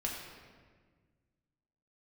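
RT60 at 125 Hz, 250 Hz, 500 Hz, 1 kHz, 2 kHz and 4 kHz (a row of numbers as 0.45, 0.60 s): 2.4, 2.2, 1.7, 1.4, 1.4, 1.1 s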